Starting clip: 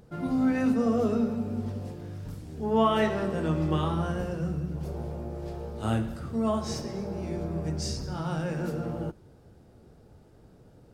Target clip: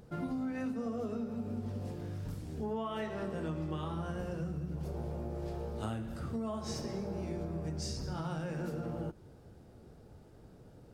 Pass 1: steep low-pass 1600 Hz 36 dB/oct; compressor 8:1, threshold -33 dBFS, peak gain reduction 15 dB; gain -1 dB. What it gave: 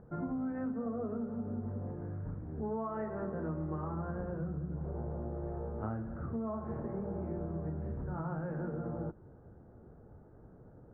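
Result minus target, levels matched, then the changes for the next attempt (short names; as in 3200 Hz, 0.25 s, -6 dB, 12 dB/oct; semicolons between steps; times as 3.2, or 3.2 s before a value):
2000 Hz band -4.0 dB
remove: steep low-pass 1600 Hz 36 dB/oct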